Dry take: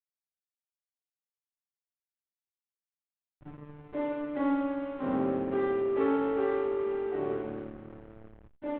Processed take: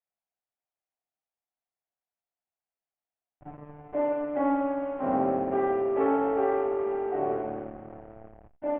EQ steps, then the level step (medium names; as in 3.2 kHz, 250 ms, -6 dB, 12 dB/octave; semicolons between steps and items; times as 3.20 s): low-pass 2.6 kHz 24 dB/octave; peaking EQ 710 Hz +14 dB 0.57 oct; 0.0 dB